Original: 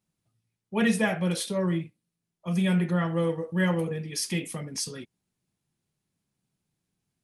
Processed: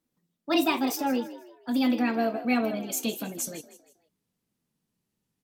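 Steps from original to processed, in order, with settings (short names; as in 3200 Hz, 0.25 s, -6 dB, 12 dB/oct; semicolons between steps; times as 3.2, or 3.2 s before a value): speed glide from 153% -> 113%; frequency-shifting echo 0.159 s, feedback 38%, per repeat +52 Hz, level -15 dB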